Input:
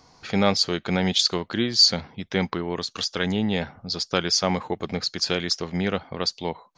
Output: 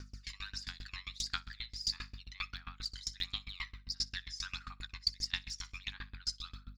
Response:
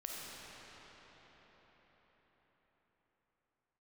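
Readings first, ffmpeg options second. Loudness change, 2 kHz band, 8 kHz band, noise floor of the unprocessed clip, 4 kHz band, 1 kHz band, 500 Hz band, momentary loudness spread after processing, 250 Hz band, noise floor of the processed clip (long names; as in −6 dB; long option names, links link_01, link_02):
−16.5 dB, −13.0 dB, −14.5 dB, −59 dBFS, −15.0 dB, −21.0 dB, below −40 dB, 9 LU, −33.5 dB, −62 dBFS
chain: -filter_complex "[0:a]highpass=frequency=1100:width=0.5412,highpass=frequency=1100:width=1.3066,highshelf=frequency=7400:gain=6.5,areverse,acompressor=threshold=-31dB:ratio=6,areverse,aexciter=amount=2:drive=2.2:freq=3400,afreqshift=350,aeval=exprs='val(0)+0.00398*(sin(2*PI*50*n/s)+sin(2*PI*2*50*n/s)/2+sin(2*PI*3*50*n/s)/3+sin(2*PI*4*50*n/s)/4+sin(2*PI*5*50*n/s)/5)':channel_layout=same,aphaser=in_gain=1:out_gain=1:delay=1:decay=0.66:speed=1.5:type=sinusoidal,asplit=2[link_01][link_02];[link_02]adelay=16,volume=-13dB[link_03];[link_01][link_03]amix=inputs=2:normalize=0,asplit=2[link_04][link_05];[link_05]aecho=0:1:61|122|183|244|305:0.2|0.104|0.054|0.0281|0.0146[link_06];[link_04][link_06]amix=inputs=2:normalize=0,aeval=exprs='val(0)*pow(10,-26*if(lt(mod(7.5*n/s,1),2*abs(7.5)/1000),1-mod(7.5*n/s,1)/(2*abs(7.5)/1000),(mod(7.5*n/s,1)-2*abs(7.5)/1000)/(1-2*abs(7.5)/1000))/20)':channel_layout=same,volume=-3.5dB"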